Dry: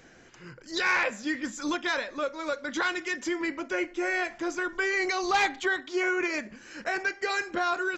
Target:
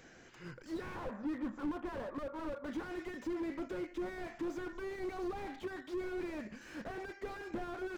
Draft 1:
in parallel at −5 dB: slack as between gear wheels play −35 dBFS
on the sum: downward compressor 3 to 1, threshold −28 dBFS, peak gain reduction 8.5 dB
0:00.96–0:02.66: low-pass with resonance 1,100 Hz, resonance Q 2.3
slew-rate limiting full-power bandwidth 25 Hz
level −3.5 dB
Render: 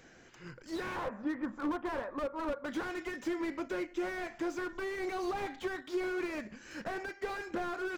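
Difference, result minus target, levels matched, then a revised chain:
slew-rate limiting: distortion −6 dB
in parallel at −5 dB: slack as between gear wheels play −35 dBFS
on the sum: downward compressor 3 to 1, threshold −28 dBFS, peak gain reduction 8.5 dB
0:00.96–0:02.66: low-pass with resonance 1,100 Hz, resonance Q 2.3
slew-rate limiting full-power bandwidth 10 Hz
level −3.5 dB

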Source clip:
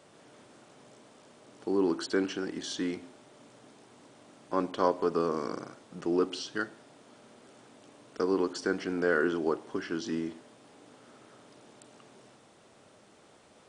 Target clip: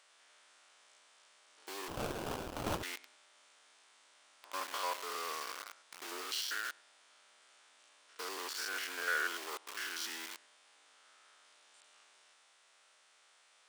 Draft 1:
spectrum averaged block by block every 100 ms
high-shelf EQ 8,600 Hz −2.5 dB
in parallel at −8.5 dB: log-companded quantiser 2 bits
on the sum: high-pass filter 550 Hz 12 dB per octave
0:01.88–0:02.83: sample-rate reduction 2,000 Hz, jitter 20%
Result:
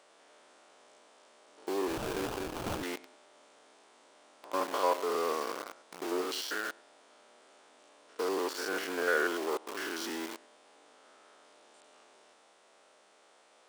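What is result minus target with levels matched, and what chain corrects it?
500 Hz band +7.5 dB
spectrum averaged block by block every 100 ms
high-shelf EQ 8,600 Hz −2.5 dB
in parallel at −8.5 dB: log-companded quantiser 2 bits
on the sum: high-pass filter 1,500 Hz 12 dB per octave
0:01.88–0:02.83: sample-rate reduction 2,000 Hz, jitter 20%

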